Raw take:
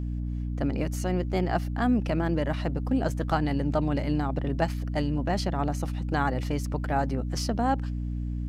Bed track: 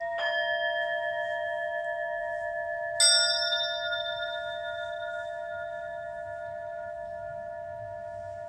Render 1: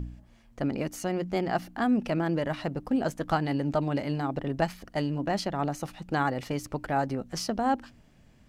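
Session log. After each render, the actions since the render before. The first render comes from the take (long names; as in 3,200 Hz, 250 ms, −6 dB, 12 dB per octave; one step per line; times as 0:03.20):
hum removal 60 Hz, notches 5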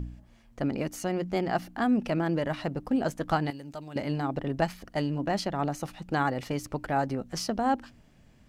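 0:03.50–0:03.96: first-order pre-emphasis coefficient 0.8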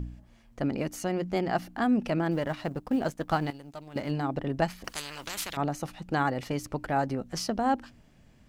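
0:02.31–0:04.11: mu-law and A-law mismatch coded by A
0:04.84–0:05.57: every bin compressed towards the loudest bin 10 to 1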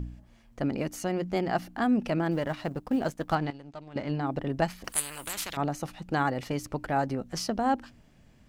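0:03.35–0:04.27: high-frequency loss of the air 100 metres
0:04.92–0:05.33: high shelf with overshoot 7,300 Hz +10 dB, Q 3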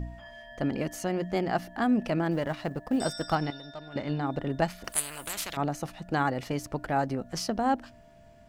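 mix in bed track −19 dB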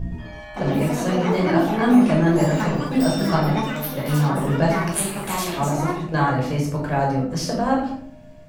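rectangular room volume 920 cubic metres, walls furnished, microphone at 5.4 metres
delay with pitch and tempo change per echo 110 ms, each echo +5 semitones, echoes 3, each echo −6 dB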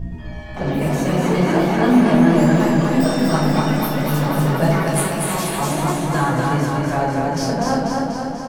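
on a send: repeating echo 298 ms, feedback 40%, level −11.5 dB
on the sum: feedback echo with a swinging delay time 244 ms, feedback 64%, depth 53 cents, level −3 dB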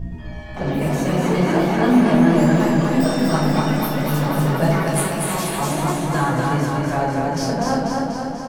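level −1 dB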